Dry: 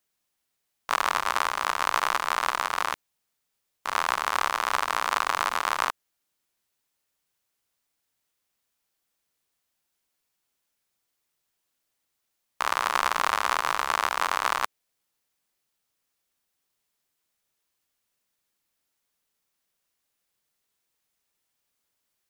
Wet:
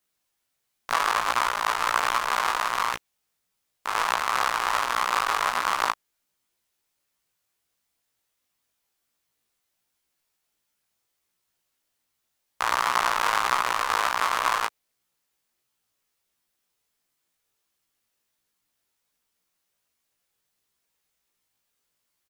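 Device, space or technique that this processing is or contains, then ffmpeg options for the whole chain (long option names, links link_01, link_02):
double-tracked vocal: -filter_complex "[0:a]asplit=2[link_01][link_02];[link_02]adelay=17,volume=-6dB[link_03];[link_01][link_03]amix=inputs=2:normalize=0,flanger=delay=16:depth=3.4:speed=1.4,volume=3.5dB"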